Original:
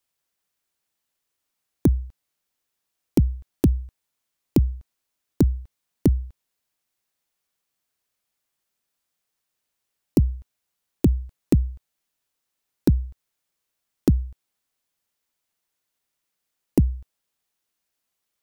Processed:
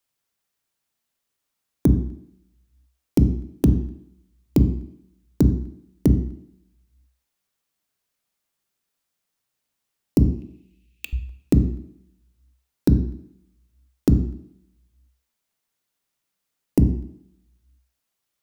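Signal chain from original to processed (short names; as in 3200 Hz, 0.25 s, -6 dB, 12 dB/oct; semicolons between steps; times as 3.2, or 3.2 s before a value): 10.25–11.13 resonant high-pass 2600 Hz, resonance Q 11; on a send: reverb RT60 0.70 s, pre-delay 3 ms, DRR 8.5 dB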